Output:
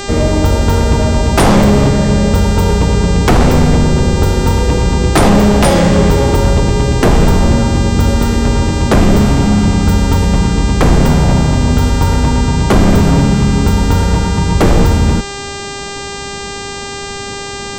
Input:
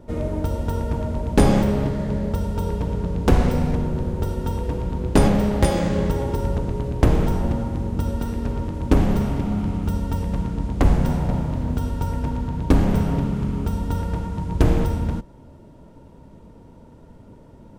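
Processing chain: sine folder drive 12 dB, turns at -2.5 dBFS; buzz 400 Hz, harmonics 21, -23 dBFS -3 dB/oct; gain -1.5 dB

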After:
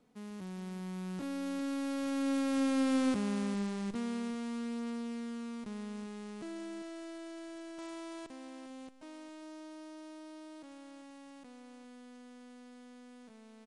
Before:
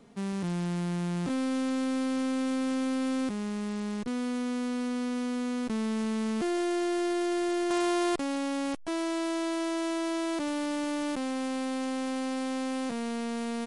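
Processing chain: Doppler pass-by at 3.01, 20 m/s, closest 14 m; echo 0.401 s -13.5 dB

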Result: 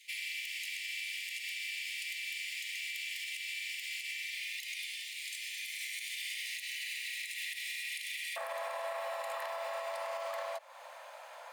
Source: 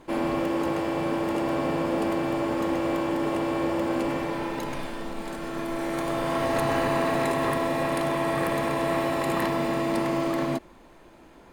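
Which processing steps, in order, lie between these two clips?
steep high-pass 2000 Hz 96 dB/oct, from 8.36 s 530 Hz; compressor 6:1, threshold -41 dBFS, peak gain reduction 15.5 dB; limiter -36 dBFS, peak gain reduction 9.5 dB; gain +6 dB

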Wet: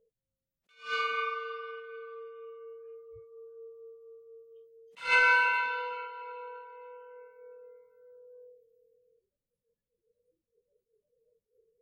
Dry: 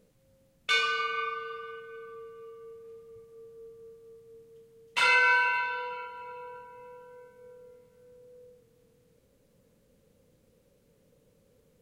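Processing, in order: spectral noise reduction 30 dB; low shelf 110 Hz +10 dB; attack slew limiter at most 190 dB/s

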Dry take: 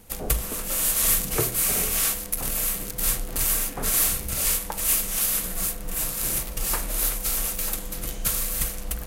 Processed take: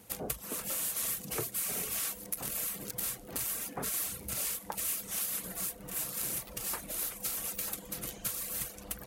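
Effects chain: reverb removal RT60 0.59 s; compressor 5:1, threshold -28 dBFS, peak gain reduction 10 dB; HPF 100 Hz 12 dB/oct; gain -3.5 dB

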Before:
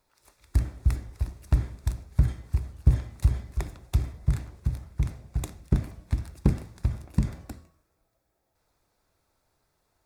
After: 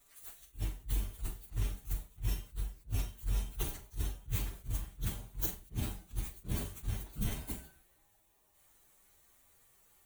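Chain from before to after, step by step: inharmonic rescaling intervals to 121%; pre-emphasis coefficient 0.8; reverse; compressor 12:1, threshold -47 dBFS, peak gain reduction 19 dB; reverse; flutter echo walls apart 7.1 m, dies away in 0.21 s; attack slew limiter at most 290 dB/s; gain +17.5 dB

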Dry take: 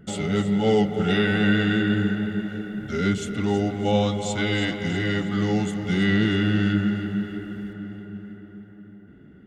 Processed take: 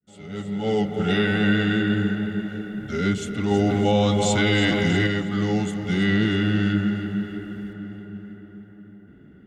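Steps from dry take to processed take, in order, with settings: opening faded in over 1.08 s; 3.51–5.07 fast leveller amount 70%

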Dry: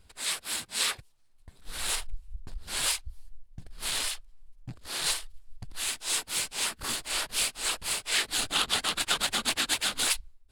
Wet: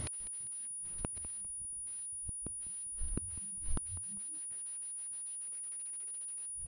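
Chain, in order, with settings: speed glide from 138% -> 177%; HPF 210 Hz 6 dB/oct; low shelf 410 Hz +12 dB; compressor 20:1, threshold -35 dBFS, peak gain reduction 13.5 dB; limiter -31.5 dBFS, peak gain reduction 7.5 dB; notches 50/100/150/200/250/300/350/400/450 Hz; flipped gate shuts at -42 dBFS, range -39 dB; frequency-shifting echo 0.199 s, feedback 35%, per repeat -110 Hz, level -14.5 dB; pulse-width modulation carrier 9700 Hz; gain +18 dB

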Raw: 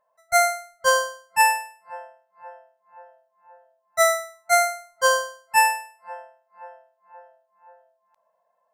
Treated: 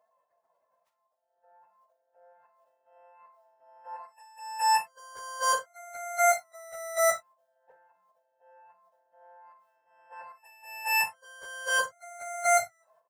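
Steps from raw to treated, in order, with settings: whole clip reversed; HPF 110 Hz 24 dB/oct; level quantiser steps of 18 dB; transient shaper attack -5 dB, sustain +9 dB; plain phase-vocoder stretch 1.5×; on a send: early reflections 39 ms -10.5 dB, 58 ms -15.5 dB; on the sum: gain +1 dB

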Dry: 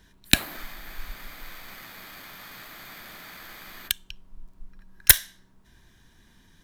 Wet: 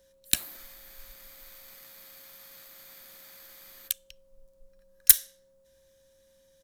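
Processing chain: tone controls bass -1 dB, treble +14 dB; harmoniser -5 st -18 dB; whine 540 Hz -47 dBFS; gain -14.5 dB

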